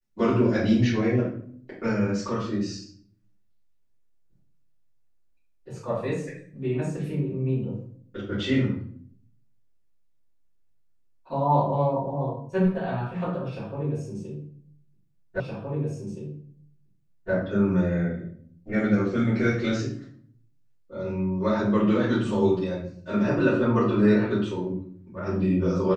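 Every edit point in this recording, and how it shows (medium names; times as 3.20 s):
15.40 s: repeat of the last 1.92 s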